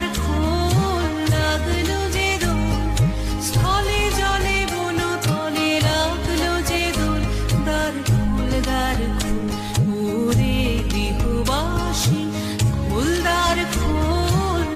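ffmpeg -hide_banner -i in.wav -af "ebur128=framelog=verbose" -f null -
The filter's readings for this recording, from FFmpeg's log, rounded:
Integrated loudness:
  I:         -20.5 LUFS
  Threshold: -30.5 LUFS
Loudness range:
  LRA:         1.2 LU
  Threshold: -40.6 LUFS
  LRA low:   -21.2 LUFS
  LRA high:  -20.0 LUFS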